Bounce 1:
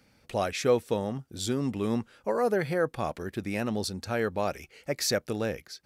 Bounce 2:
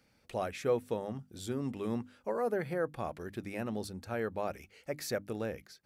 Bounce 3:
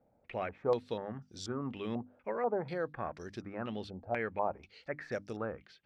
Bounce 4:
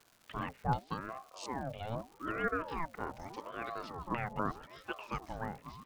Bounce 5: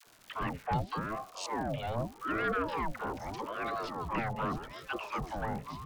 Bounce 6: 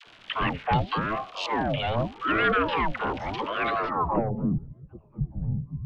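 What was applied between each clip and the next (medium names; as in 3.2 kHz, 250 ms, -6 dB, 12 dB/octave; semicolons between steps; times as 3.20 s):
hum notches 50/100/150/200/250/300 Hz; dynamic bell 5.1 kHz, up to -8 dB, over -49 dBFS, Q 0.72; trim -6 dB
step-sequenced low-pass 4.1 Hz 690–5500 Hz; trim -3 dB
repeats whose band climbs or falls 774 ms, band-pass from 200 Hz, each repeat 1.4 oct, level -7.5 dB; crackle 380 per s -48 dBFS; ring modulator with a swept carrier 620 Hz, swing 50%, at 0.82 Hz; trim +1 dB
in parallel at +2 dB: peak limiter -29 dBFS, peak gain reduction 10 dB; on the sum: sine folder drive 3 dB, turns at -15.5 dBFS; phase dispersion lows, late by 68 ms, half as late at 560 Hz; trim -7.5 dB
low-pass sweep 3.1 kHz -> 140 Hz, 3.72–4.61 s; trim +7.5 dB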